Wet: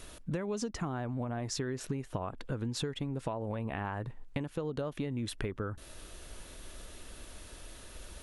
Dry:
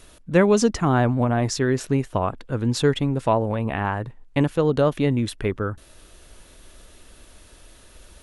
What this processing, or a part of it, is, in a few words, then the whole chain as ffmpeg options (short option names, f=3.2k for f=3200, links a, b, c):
serial compression, peaks first: -af "acompressor=threshold=-26dB:ratio=10,acompressor=threshold=-34dB:ratio=2.5"